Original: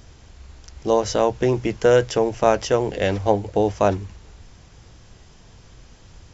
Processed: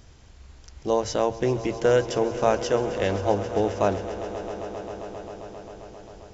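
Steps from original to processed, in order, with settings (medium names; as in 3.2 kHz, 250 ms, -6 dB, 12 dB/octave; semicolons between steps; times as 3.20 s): echo with a slow build-up 133 ms, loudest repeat 5, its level -17 dB; trim -4.5 dB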